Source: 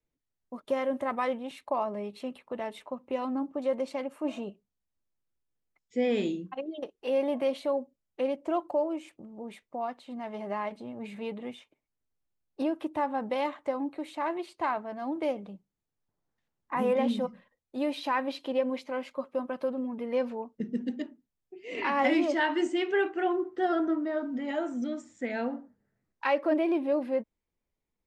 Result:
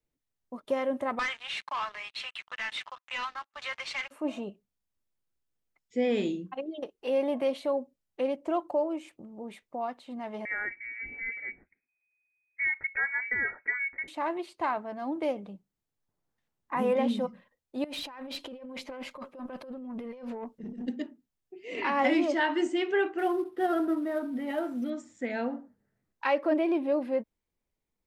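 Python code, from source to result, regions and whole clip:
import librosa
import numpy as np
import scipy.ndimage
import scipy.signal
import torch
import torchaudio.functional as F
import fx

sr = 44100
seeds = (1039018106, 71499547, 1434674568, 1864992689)

y = fx.chain(x, sr, fx.highpass(hz=1500.0, slope=24),
    fx.leveller(passes=5),
    fx.air_absorb(metres=120.0), at=(1.19, 4.11))
y = fx.chain(y, sr, fx.peak_eq(hz=1300.0, db=-6.0, octaves=0.37),
    fx.freq_invert(carrier_hz=2500), at=(10.45, 14.08))
y = fx.chain(y, sr, fx.over_compress(threshold_db=-39.0, ratio=-1.0),
    fx.tube_stage(drive_db=31.0, bias=0.25), at=(17.84, 20.88))
y = fx.chain(y, sr, fx.cvsd(bps=64000),
    fx.peak_eq(hz=6900.0, db=-13.5, octaves=0.96), at=(23.18, 24.9))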